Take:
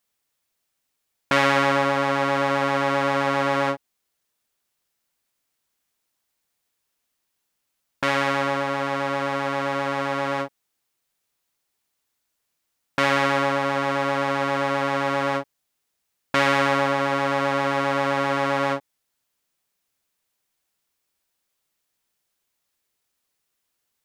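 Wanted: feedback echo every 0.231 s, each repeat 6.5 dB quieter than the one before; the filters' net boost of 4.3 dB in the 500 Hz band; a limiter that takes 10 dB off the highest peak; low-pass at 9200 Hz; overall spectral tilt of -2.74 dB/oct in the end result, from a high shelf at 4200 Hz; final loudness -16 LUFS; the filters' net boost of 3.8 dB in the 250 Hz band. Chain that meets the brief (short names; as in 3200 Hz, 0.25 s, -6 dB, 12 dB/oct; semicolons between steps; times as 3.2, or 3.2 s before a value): LPF 9200 Hz; bell 250 Hz +3 dB; bell 500 Hz +4.5 dB; high shelf 4200 Hz -7.5 dB; limiter -13 dBFS; feedback echo 0.231 s, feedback 47%, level -6.5 dB; gain +6 dB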